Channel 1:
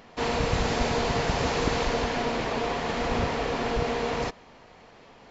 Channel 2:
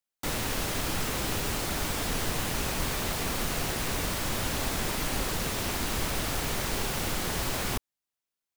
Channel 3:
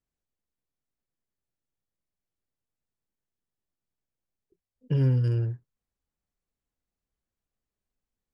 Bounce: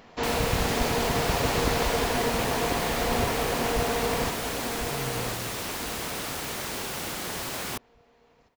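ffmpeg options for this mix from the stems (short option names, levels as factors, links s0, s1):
-filter_complex "[0:a]volume=0.944,asplit=2[s0][s1];[s1]volume=0.447[s2];[1:a]highpass=f=200:p=1,volume=0.891[s3];[2:a]volume=0.168[s4];[s2]aecho=0:1:1046|2092|3138|4184|5230:1|0.36|0.13|0.0467|0.0168[s5];[s0][s3][s4][s5]amix=inputs=4:normalize=0"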